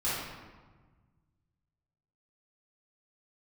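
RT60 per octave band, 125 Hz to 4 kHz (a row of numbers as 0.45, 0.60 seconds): 2.5, 1.9, 1.4, 1.4, 1.1, 0.85 seconds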